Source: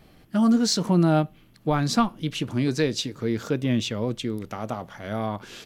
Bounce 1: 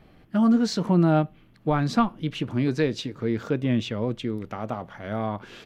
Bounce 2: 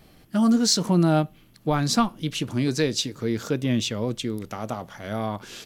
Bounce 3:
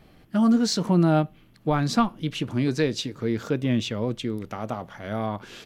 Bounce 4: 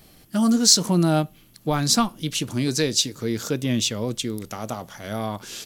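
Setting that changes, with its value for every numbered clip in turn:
bass and treble, treble: −12, +5, −4, +14 decibels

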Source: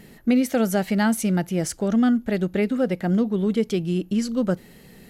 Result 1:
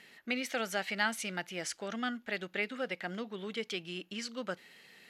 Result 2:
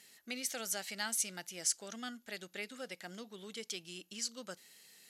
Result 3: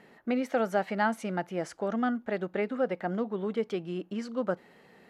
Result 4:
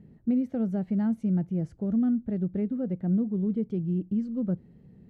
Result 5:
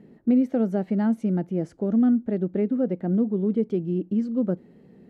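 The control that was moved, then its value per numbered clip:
resonant band-pass, frequency: 2,600, 6,600, 980, 110, 290 Hertz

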